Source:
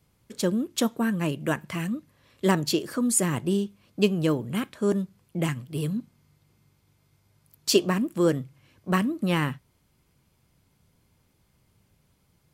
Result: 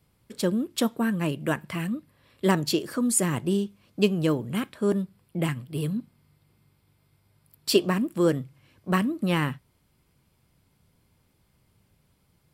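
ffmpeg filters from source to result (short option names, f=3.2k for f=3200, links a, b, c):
-af "asetnsamples=n=441:p=0,asendcmd='1.72 equalizer g -14.5;2.5 equalizer g -3.5;4.73 equalizer g -14.5;7.84 equalizer g -6',equalizer=f=6.4k:t=o:w=0.23:g=-8"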